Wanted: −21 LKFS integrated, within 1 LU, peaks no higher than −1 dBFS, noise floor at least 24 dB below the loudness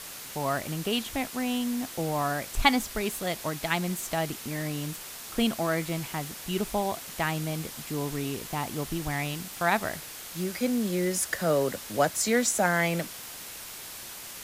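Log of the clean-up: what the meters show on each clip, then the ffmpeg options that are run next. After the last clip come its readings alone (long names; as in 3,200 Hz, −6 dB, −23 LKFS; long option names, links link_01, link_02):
background noise floor −42 dBFS; target noise floor −54 dBFS; integrated loudness −29.5 LKFS; sample peak −6.5 dBFS; target loudness −21.0 LKFS
→ -af "afftdn=noise_reduction=12:noise_floor=-42"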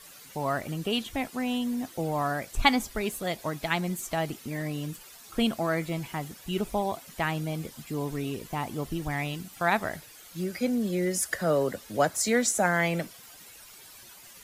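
background noise floor −50 dBFS; target noise floor −54 dBFS
→ -af "afftdn=noise_reduction=6:noise_floor=-50"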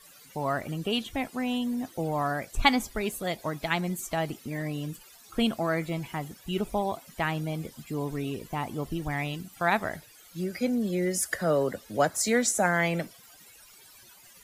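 background noise floor −54 dBFS; integrated loudness −29.5 LKFS; sample peak −6.5 dBFS; target loudness −21.0 LKFS
→ -af "volume=8.5dB,alimiter=limit=-1dB:level=0:latency=1"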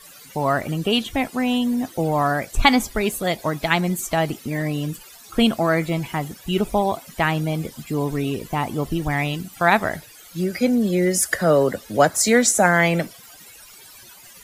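integrated loudness −21.0 LKFS; sample peak −1.0 dBFS; background noise floor −45 dBFS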